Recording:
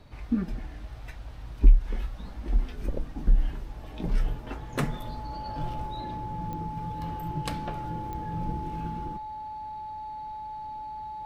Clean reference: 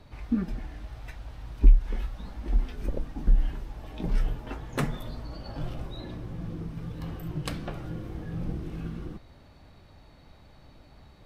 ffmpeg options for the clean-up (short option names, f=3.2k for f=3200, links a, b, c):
-af "adeclick=t=4,bandreject=f=860:w=30"